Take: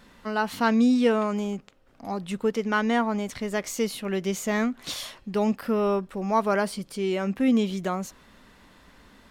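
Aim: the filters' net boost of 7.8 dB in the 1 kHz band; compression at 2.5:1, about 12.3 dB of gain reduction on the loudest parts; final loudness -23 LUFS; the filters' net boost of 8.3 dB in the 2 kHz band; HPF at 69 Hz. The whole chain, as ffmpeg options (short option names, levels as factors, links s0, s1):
-af "highpass=69,equalizer=f=1000:t=o:g=7.5,equalizer=f=2000:t=o:g=8,acompressor=threshold=0.0316:ratio=2.5,volume=2.51"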